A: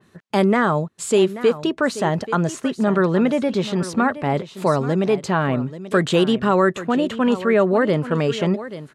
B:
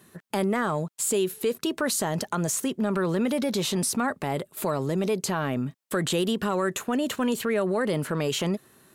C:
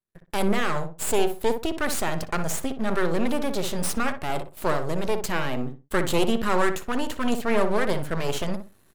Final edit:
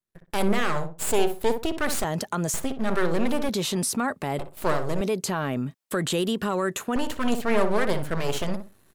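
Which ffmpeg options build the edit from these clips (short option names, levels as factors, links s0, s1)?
-filter_complex "[1:a]asplit=3[s0][s1][s2];[2:a]asplit=4[s3][s4][s5][s6];[s3]atrim=end=2.042[s7];[s0]atrim=start=2.038:end=2.542[s8];[s4]atrim=start=2.538:end=3.492[s9];[s1]atrim=start=3.488:end=4.392[s10];[s5]atrim=start=4.388:end=5.012[s11];[s2]atrim=start=5.008:end=6.962[s12];[s6]atrim=start=6.958[s13];[s7][s8]acrossfade=d=0.004:c1=hsin:c2=hsin[s14];[s14][s9]acrossfade=d=0.004:c1=hsin:c2=hsin[s15];[s15][s10]acrossfade=d=0.004:c1=hsin:c2=hsin[s16];[s16][s11]acrossfade=d=0.004:c1=hsin:c2=hsin[s17];[s17][s12]acrossfade=d=0.004:c1=hsin:c2=hsin[s18];[s18][s13]acrossfade=d=0.004:c1=hsin:c2=hsin"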